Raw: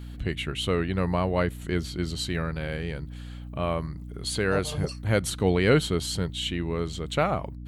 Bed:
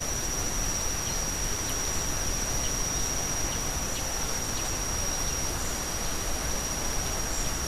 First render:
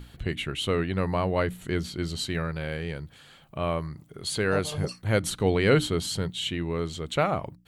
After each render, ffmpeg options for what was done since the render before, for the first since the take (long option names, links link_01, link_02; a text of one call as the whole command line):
ffmpeg -i in.wav -af "bandreject=frequency=60:width_type=h:width=6,bandreject=frequency=120:width_type=h:width=6,bandreject=frequency=180:width_type=h:width=6,bandreject=frequency=240:width_type=h:width=6,bandreject=frequency=300:width_type=h:width=6" out.wav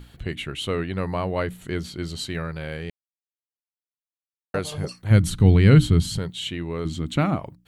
ffmpeg -i in.wav -filter_complex "[0:a]asplit=3[link_01][link_02][link_03];[link_01]afade=type=out:start_time=5.1:duration=0.02[link_04];[link_02]asubboost=boost=7:cutoff=200,afade=type=in:start_time=5.1:duration=0.02,afade=type=out:start_time=6.17:duration=0.02[link_05];[link_03]afade=type=in:start_time=6.17:duration=0.02[link_06];[link_04][link_05][link_06]amix=inputs=3:normalize=0,asettb=1/sr,asplit=3[link_07][link_08][link_09];[link_07]atrim=end=6.854[link_10];[link_08]atrim=start=6.85:end=7.36,asetpts=PTS-STARTPTS,afade=type=in:duration=0.004:curve=qsin,afade=type=out:start_time=0.506:duration=0.004:curve=qsin,lowshelf=frequency=360:width_type=q:width=3:gain=7[link_11];[link_09]atrim=start=7.356[link_12];[link_10][link_11]acrossfade=duration=0.004:curve1=hsin:curve2=qsin[link_13];[link_13][link_12]acrossfade=duration=0.004:curve1=qsin:curve2=hsin,asplit=3[link_14][link_15][link_16];[link_14]atrim=end=2.9,asetpts=PTS-STARTPTS,afade=type=out:start_time=2.896:duration=0.004:curve=hsin[link_17];[link_15]atrim=start=2.9:end=4.54,asetpts=PTS-STARTPTS,volume=0[link_18];[link_16]atrim=start=4.54,asetpts=PTS-STARTPTS,afade=type=in:duration=0.004:curve=hsin[link_19];[link_17][link_18][link_19]concat=n=3:v=0:a=1" out.wav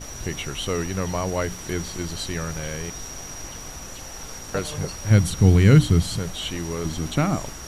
ffmpeg -i in.wav -i bed.wav -filter_complex "[1:a]volume=-6.5dB[link_01];[0:a][link_01]amix=inputs=2:normalize=0" out.wav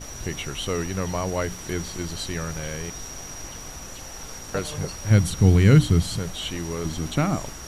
ffmpeg -i in.wav -af "volume=-1dB" out.wav